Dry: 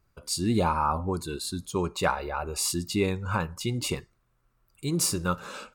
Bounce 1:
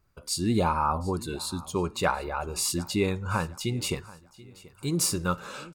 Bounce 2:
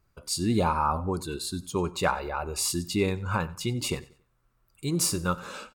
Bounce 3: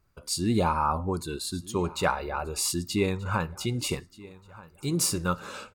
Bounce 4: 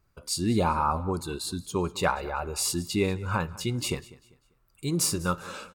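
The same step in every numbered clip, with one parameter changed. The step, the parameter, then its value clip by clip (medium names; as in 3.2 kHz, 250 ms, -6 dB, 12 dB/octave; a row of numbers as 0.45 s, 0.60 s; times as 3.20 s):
feedback delay, time: 733 ms, 93 ms, 1230 ms, 197 ms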